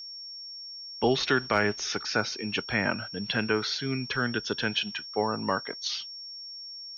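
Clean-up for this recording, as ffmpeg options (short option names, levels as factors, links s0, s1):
-af "bandreject=f=5500:w=30"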